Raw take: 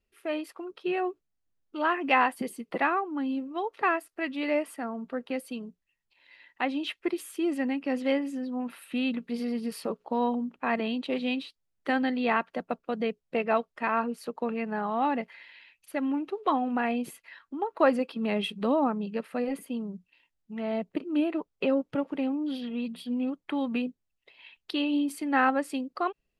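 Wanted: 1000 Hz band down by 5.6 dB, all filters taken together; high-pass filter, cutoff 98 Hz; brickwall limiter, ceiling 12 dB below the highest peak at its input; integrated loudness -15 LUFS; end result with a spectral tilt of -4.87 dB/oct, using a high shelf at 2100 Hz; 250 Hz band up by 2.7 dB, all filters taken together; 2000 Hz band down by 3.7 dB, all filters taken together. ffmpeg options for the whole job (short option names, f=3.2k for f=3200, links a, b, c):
-af "highpass=98,equalizer=f=250:t=o:g=3.5,equalizer=f=1k:t=o:g=-7.5,equalizer=f=2k:t=o:g=-4.5,highshelf=f=2.1k:g=3.5,volume=18dB,alimiter=limit=-6dB:level=0:latency=1"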